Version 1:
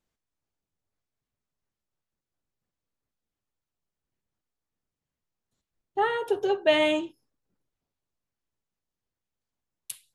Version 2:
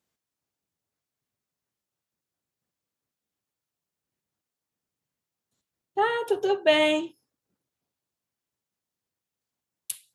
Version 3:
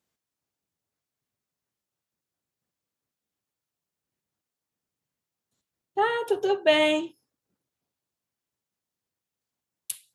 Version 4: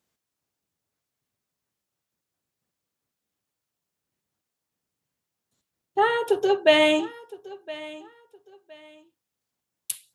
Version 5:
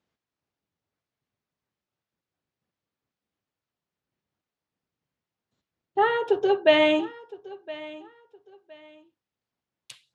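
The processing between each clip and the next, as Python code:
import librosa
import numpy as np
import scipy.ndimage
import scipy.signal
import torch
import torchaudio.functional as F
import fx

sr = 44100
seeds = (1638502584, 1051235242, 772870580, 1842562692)

y1 = scipy.signal.sosfilt(scipy.signal.butter(2, 100.0, 'highpass', fs=sr, output='sos'), x)
y1 = fx.high_shelf(y1, sr, hz=4600.0, db=4.5)
y1 = y1 * 10.0 ** (1.0 / 20.0)
y2 = y1
y3 = fx.echo_feedback(y2, sr, ms=1015, feedback_pct=26, wet_db=-19)
y3 = y3 * 10.0 ** (3.0 / 20.0)
y4 = fx.air_absorb(y3, sr, metres=160.0)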